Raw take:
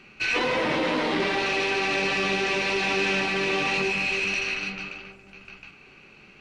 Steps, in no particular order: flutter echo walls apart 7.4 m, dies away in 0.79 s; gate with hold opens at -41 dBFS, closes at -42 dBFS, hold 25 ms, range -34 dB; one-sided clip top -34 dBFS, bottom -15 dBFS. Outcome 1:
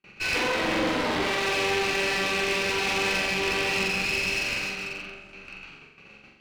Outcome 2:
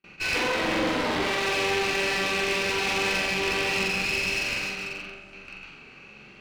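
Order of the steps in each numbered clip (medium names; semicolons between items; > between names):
gate with hold > flutter echo > one-sided clip; flutter echo > one-sided clip > gate with hold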